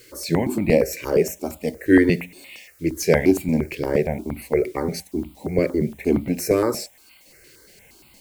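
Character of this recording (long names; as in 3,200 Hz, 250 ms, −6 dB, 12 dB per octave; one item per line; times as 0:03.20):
a quantiser's noise floor 10 bits, dither triangular
notches that jump at a steady rate 8.6 Hz 210–1,700 Hz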